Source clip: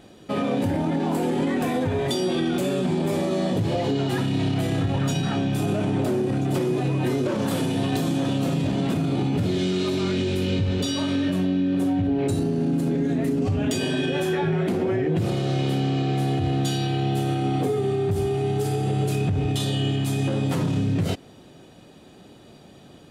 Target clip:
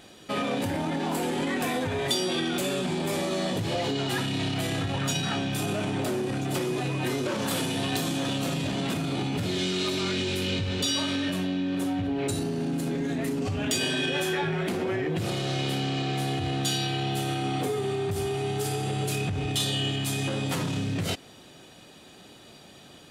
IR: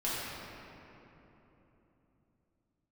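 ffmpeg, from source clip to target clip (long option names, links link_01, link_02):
-filter_complex "[0:a]asplit=2[link_01][link_02];[link_02]asoftclip=type=tanh:threshold=-29.5dB,volume=-9dB[link_03];[link_01][link_03]amix=inputs=2:normalize=0,tiltshelf=frequency=920:gain=-5.5,volume=-2.5dB"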